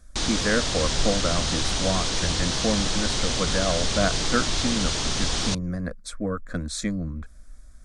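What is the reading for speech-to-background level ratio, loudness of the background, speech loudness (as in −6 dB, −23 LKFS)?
−3.5 dB, −25.0 LKFS, −28.5 LKFS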